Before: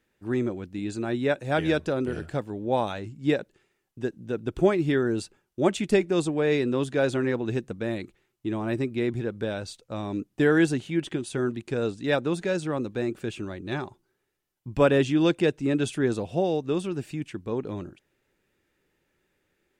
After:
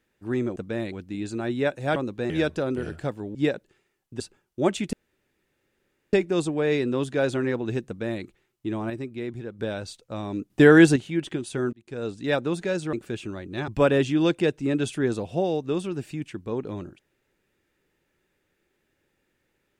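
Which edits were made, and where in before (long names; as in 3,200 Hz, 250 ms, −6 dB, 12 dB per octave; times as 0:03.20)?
0:02.65–0:03.20: remove
0:04.05–0:05.20: remove
0:05.93: splice in room tone 1.20 s
0:07.67–0:08.03: duplicate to 0:00.56
0:08.70–0:09.39: clip gain −6 dB
0:10.30–0:10.76: clip gain +7 dB
0:11.53–0:12.00: fade in
0:12.73–0:13.07: move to 0:01.60
0:13.82–0:14.68: remove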